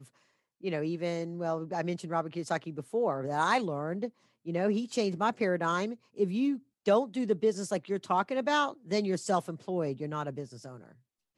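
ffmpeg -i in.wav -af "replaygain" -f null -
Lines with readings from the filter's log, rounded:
track_gain = +11.1 dB
track_peak = 0.145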